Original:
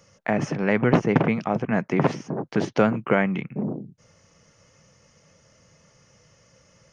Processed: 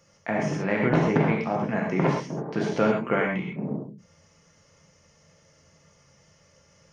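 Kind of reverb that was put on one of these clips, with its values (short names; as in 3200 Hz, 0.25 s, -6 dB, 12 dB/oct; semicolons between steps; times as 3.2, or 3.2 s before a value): non-linear reverb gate 0.15 s flat, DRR -2 dB; gain -5.5 dB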